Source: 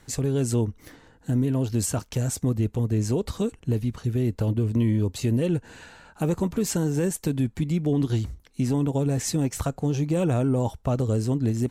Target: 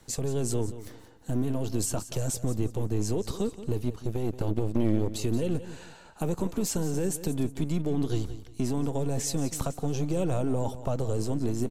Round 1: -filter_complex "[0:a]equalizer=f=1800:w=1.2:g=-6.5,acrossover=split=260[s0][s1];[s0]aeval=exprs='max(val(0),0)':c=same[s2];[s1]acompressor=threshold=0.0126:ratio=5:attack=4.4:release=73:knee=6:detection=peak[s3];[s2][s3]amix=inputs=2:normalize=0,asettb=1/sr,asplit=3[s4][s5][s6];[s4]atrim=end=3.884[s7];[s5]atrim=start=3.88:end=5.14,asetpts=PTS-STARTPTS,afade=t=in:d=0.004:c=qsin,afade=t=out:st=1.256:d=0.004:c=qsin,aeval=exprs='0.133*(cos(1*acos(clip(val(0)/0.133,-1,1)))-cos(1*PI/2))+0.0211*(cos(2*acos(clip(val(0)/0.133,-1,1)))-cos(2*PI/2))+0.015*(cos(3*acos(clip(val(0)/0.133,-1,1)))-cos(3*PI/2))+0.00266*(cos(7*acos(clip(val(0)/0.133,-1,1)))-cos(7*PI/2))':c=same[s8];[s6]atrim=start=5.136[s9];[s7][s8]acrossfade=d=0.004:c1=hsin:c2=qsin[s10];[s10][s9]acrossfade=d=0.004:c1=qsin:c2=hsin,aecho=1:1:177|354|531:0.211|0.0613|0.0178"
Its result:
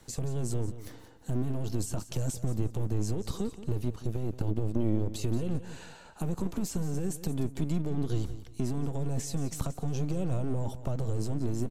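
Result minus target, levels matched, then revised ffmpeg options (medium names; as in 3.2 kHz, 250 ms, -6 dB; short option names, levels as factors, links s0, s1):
compression: peak gain reduction +9.5 dB
-filter_complex "[0:a]equalizer=f=1800:w=1.2:g=-6.5,acrossover=split=260[s0][s1];[s0]aeval=exprs='max(val(0),0)':c=same[s2];[s1]acompressor=threshold=0.0501:ratio=5:attack=4.4:release=73:knee=6:detection=peak[s3];[s2][s3]amix=inputs=2:normalize=0,asettb=1/sr,asplit=3[s4][s5][s6];[s4]atrim=end=3.884[s7];[s5]atrim=start=3.88:end=5.14,asetpts=PTS-STARTPTS,afade=t=in:d=0.004:c=qsin,afade=t=out:st=1.256:d=0.004:c=qsin,aeval=exprs='0.133*(cos(1*acos(clip(val(0)/0.133,-1,1)))-cos(1*PI/2))+0.0211*(cos(2*acos(clip(val(0)/0.133,-1,1)))-cos(2*PI/2))+0.015*(cos(3*acos(clip(val(0)/0.133,-1,1)))-cos(3*PI/2))+0.00266*(cos(7*acos(clip(val(0)/0.133,-1,1)))-cos(7*PI/2))':c=same[s8];[s6]atrim=start=5.136[s9];[s7][s8]acrossfade=d=0.004:c1=hsin:c2=qsin[s10];[s10][s9]acrossfade=d=0.004:c1=qsin:c2=hsin,aecho=1:1:177|354|531:0.211|0.0613|0.0178"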